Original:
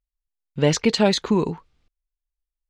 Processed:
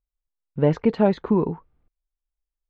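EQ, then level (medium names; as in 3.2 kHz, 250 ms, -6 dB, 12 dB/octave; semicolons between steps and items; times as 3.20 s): low-pass 1.2 kHz 12 dB/octave; 0.0 dB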